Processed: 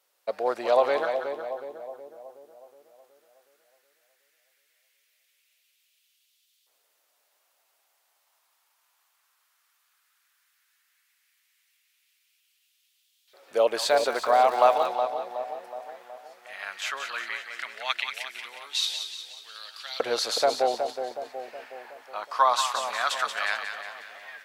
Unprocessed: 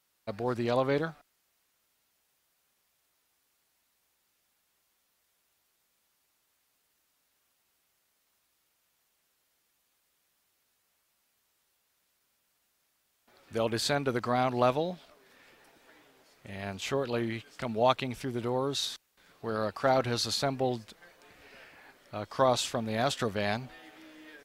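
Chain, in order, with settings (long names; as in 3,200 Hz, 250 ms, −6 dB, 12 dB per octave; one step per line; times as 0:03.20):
auto-filter high-pass saw up 0.15 Hz 500–3,500 Hz
echo with a time of its own for lows and highs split 850 Hz, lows 369 ms, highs 181 ms, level −7 dB
0:13.79–0:14.86: surface crackle 300 per second −37 dBFS
level +2.5 dB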